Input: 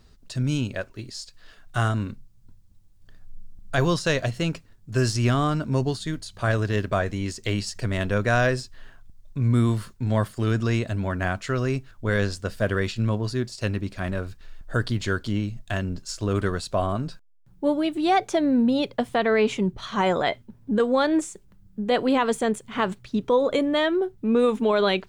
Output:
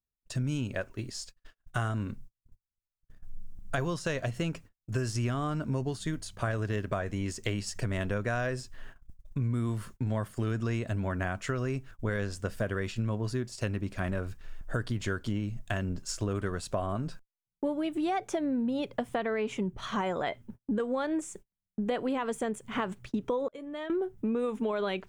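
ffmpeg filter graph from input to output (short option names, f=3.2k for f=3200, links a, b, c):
-filter_complex "[0:a]asettb=1/sr,asplit=3[a][b][c];[a]atrim=end=23.484[d];[b]atrim=start=23.48:end=23.9,asetpts=PTS-STARTPTS,afade=t=in:d=0.004:c=qsin,afade=t=out:st=0.416:d=0.004:c=qsin,agate=range=-33dB:threshold=-14dB:ratio=3:release=100:detection=peak,acompressor=threshold=-35dB:ratio=5:attack=3.2:release=140:knee=1:detection=peak,asplit=2[e][f];[f]adelay=13,volume=-13dB[g];[e][g]amix=inputs=2:normalize=0,atrim=end_sample=18522[h];[c]atrim=start=23.896[i];[d][h]acrossfade=d=0.004:c1=hsin:c2=qsin[j];[j][i]acrossfade=d=0.004:c1=qsin:c2=hsin,agate=range=-41dB:threshold=-43dB:ratio=16:detection=peak,equalizer=f=4.2k:t=o:w=0.6:g=-7.5,acompressor=threshold=-28dB:ratio=6"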